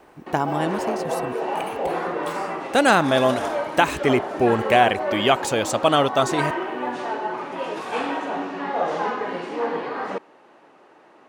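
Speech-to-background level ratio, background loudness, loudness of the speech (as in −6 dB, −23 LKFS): 6.5 dB, −27.5 LKFS, −21.0 LKFS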